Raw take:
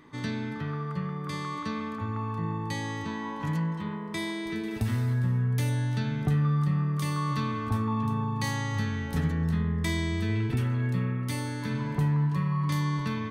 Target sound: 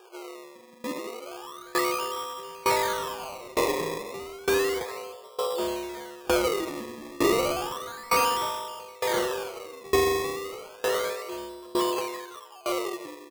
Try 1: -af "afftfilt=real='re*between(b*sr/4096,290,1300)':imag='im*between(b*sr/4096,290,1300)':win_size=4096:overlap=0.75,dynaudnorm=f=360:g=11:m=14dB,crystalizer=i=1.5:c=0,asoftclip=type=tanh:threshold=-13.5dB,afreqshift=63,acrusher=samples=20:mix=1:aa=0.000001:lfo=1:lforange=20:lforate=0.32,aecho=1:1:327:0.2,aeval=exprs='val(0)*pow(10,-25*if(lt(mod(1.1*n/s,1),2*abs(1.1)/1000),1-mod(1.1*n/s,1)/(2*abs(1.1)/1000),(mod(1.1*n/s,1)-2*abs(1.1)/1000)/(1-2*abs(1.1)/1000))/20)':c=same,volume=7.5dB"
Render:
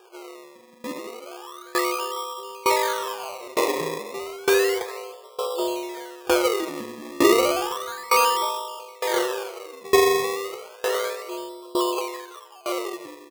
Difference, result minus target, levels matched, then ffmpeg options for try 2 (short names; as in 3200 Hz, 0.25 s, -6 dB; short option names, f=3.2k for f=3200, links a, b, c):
soft clip: distortion -13 dB
-af "afftfilt=real='re*between(b*sr/4096,290,1300)':imag='im*between(b*sr/4096,290,1300)':win_size=4096:overlap=0.75,dynaudnorm=f=360:g=11:m=14dB,crystalizer=i=1.5:c=0,asoftclip=type=tanh:threshold=-24.5dB,afreqshift=63,acrusher=samples=20:mix=1:aa=0.000001:lfo=1:lforange=20:lforate=0.32,aecho=1:1:327:0.2,aeval=exprs='val(0)*pow(10,-25*if(lt(mod(1.1*n/s,1),2*abs(1.1)/1000),1-mod(1.1*n/s,1)/(2*abs(1.1)/1000),(mod(1.1*n/s,1)-2*abs(1.1)/1000)/(1-2*abs(1.1)/1000))/20)':c=same,volume=7.5dB"